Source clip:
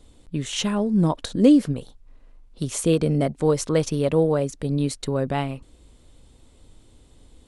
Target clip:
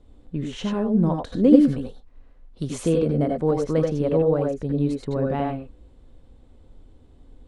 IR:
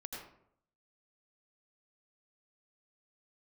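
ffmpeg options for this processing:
-filter_complex "[0:a]asetnsamples=n=441:p=0,asendcmd='1.53 lowpass f 3000;2.89 lowpass f 1100',lowpass=f=1.1k:p=1[a];[1:a]atrim=start_sample=2205,atrim=end_sample=4410[b];[a][b]afir=irnorm=-1:irlink=0,volume=4.5dB"

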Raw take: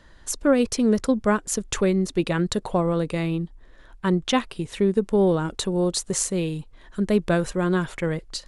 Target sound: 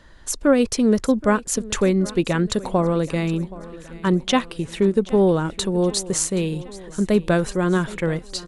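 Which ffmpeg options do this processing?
-af "aecho=1:1:774|1548|2322|3096|3870:0.112|0.0673|0.0404|0.0242|0.0145,volume=2.5dB"

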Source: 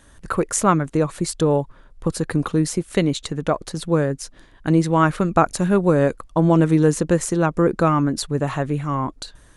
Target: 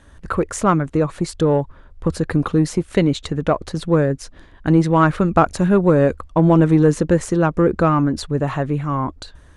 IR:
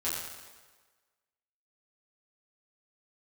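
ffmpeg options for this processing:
-filter_complex "[0:a]asplit=2[a][b];[b]asoftclip=type=tanh:threshold=-16.5dB,volume=-6.5dB[c];[a][c]amix=inputs=2:normalize=0,aemphasis=mode=reproduction:type=50kf,dynaudnorm=f=420:g=11:m=11.5dB,equalizer=f=75:t=o:w=0.3:g=11.5,volume=-1dB"

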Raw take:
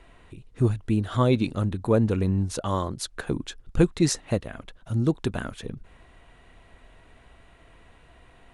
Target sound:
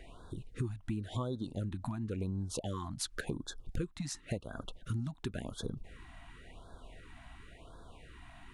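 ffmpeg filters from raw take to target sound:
-af "acompressor=threshold=-34dB:ratio=10,aeval=exprs='0.0531*(abs(mod(val(0)/0.0531+3,4)-2)-1)':c=same,afftfilt=real='re*(1-between(b*sr/1024,420*pow(2400/420,0.5+0.5*sin(2*PI*0.93*pts/sr))/1.41,420*pow(2400/420,0.5+0.5*sin(2*PI*0.93*pts/sr))*1.41))':imag='im*(1-between(b*sr/1024,420*pow(2400/420,0.5+0.5*sin(2*PI*0.93*pts/sr))/1.41,420*pow(2400/420,0.5+0.5*sin(2*PI*0.93*pts/sr))*1.41))':win_size=1024:overlap=0.75,volume=1dB"

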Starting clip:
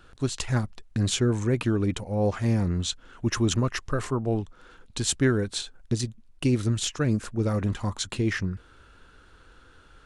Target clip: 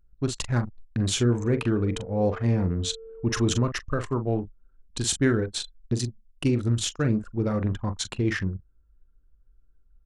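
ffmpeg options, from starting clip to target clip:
-filter_complex "[0:a]asplit=2[a][b];[b]adelay=42,volume=-8.5dB[c];[a][c]amix=inputs=2:normalize=0,asettb=1/sr,asplit=3[d][e][f];[d]atrim=end=1.304[g];[e]atrim=start=1.3:end=3.64,asetpts=PTS-STARTPTS,afade=t=in:d=0.004:c=qsin,afade=t=out:st=2.336:d=0.004:c=qsin,aeval=exprs='val(0)+0.0141*sin(2*PI*450*n/s)':c=same[h];[f]atrim=start=3.636[i];[g][h]acrossfade=d=0.004:c1=hsin:c2=qsin[j];[j][i]acrossfade=d=0.004:c1=qsin:c2=hsin,anlmdn=10"

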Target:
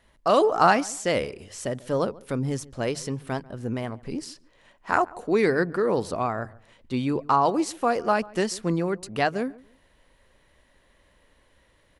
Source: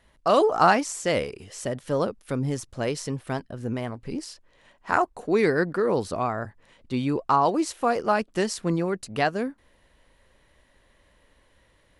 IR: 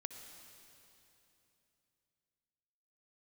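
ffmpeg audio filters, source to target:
-filter_complex "[0:a]bandreject=f=50:t=h:w=6,bandreject=f=100:t=h:w=6,bandreject=f=150:t=h:w=6,asplit=2[a][b];[b]adelay=142,lowpass=f=1.4k:p=1,volume=-21dB,asplit=2[c][d];[d]adelay=142,lowpass=f=1.4k:p=1,volume=0.26[e];[a][c][e]amix=inputs=3:normalize=0"

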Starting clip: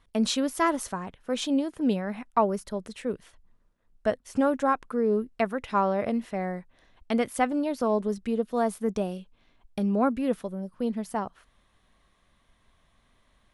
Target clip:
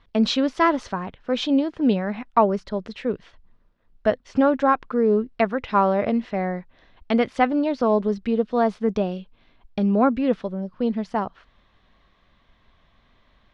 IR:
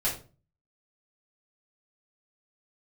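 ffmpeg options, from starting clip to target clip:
-af "lowpass=f=4.8k:w=0.5412,lowpass=f=4.8k:w=1.3066,volume=5.5dB"

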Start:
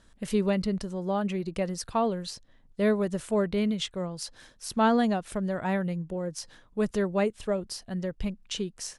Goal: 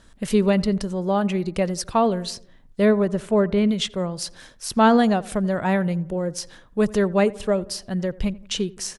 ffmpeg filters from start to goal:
-filter_complex "[0:a]asettb=1/sr,asplit=3[a][b][c];[a]atrim=end=2.854[d];[b]atrim=start=2.85:end=3.69,asetpts=PTS-STARTPTS,afade=t=in:d=0.004:c=qsin,afade=t=out:st=0.836:d=0.004:c=qsin,highshelf=f=3.9k:g=-10.5[e];[c]atrim=start=3.686[f];[d][e]acrossfade=d=0.004:c1=hsin:c2=qsin[g];[g][f]acrossfade=d=0.004:c1=qsin:c2=hsin,asplit=2[h][i];[i]adelay=86,lowpass=f=1.6k:p=1,volume=-20dB,asplit=2[j][k];[k]adelay=86,lowpass=f=1.6k:p=1,volume=0.54,asplit=2[l][m];[m]adelay=86,lowpass=f=1.6k:p=1,volume=0.54,asplit=2[n][o];[o]adelay=86,lowpass=f=1.6k:p=1,volume=0.54[p];[j][l][n][p]amix=inputs=4:normalize=0[q];[h][q]amix=inputs=2:normalize=0,volume=7dB"

